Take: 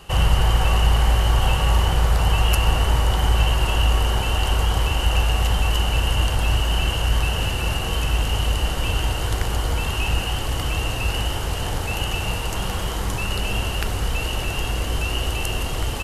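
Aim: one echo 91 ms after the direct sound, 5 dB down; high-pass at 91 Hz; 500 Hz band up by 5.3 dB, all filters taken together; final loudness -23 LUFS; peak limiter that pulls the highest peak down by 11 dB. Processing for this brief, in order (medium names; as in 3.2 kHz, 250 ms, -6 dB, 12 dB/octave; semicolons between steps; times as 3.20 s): high-pass 91 Hz; peaking EQ 500 Hz +6.5 dB; peak limiter -17 dBFS; delay 91 ms -5 dB; trim +2 dB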